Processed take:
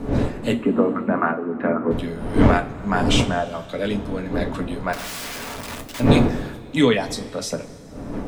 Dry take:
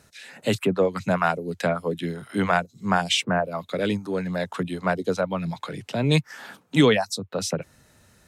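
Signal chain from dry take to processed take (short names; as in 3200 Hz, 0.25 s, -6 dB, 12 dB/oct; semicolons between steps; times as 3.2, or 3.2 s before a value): wind noise 340 Hz -24 dBFS; 0.52–1.91 speaker cabinet 180–2000 Hz, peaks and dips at 230 Hz +10 dB, 340 Hz +8 dB, 1200 Hz +5 dB; 4.93–6 wrapped overs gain 27 dB; two-slope reverb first 0.21 s, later 2.2 s, from -19 dB, DRR 4 dB; gain -1.5 dB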